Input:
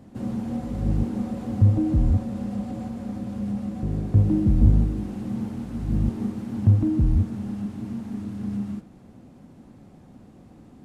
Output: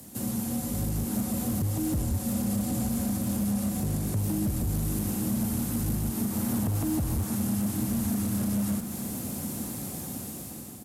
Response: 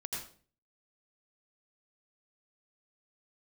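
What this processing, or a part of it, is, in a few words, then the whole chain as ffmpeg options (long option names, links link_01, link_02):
FM broadcast chain: -filter_complex "[0:a]highpass=frequency=55:width=0.5412,highpass=frequency=55:width=1.3066,dynaudnorm=framelen=460:gausssize=5:maxgain=13dB,acrossover=split=260|620|1800[link_01][link_02][link_03][link_04];[link_01]acompressor=threshold=-22dB:ratio=4[link_05];[link_02]acompressor=threshold=-38dB:ratio=4[link_06];[link_03]acompressor=threshold=-44dB:ratio=4[link_07];[link_04]acompressor=threshold=-58dB:ratio=4[link_08];[link_05][link_06][link_07][link_08]amix=inputs=4:normalize=0,aemphasis=mode=production:type=75fm,alimiter=limit=-19dB:level=0:latency=1:release=94,asoftclip=type=hard:threshold=-23dB,lowpass=frequency=15000:width=0.5412,lowpass=frequency=15000:width=1.3066,aemphasis=mode=production:type=75fm,asettb=1/sr,asplit=3[link_09][link_10][link_11];[link_09]atrim=end=6.324[link_12];[link_10]atrim=start=6.32:end=7.35,asetpts=PTS-STARTPTS,afade=type=in:duration=0.004:curve=qsin,afade=type=out:start_time=1.026:duration=0.004:curve=qsin,equalizer=frequency=870:width_type=o:width=1.7:gain=4[link_13];[link_11]atrim=start=7.346[link_14];[link_12][link_13]acrossfade=duration=0.004:curve1=hsin:curve2=qsin[link_15];[link_15][link_14]acrossfade=duration=0.004:curve1=qsin:curve2=hsin,asplit=2[link_16][link_17];[link_17]adelay=874.6,volume=-11dB,highshelf=frequency=4000:gain=-19.7[link_18];[link_16][link_18]amix=inputs=2:normalize=0"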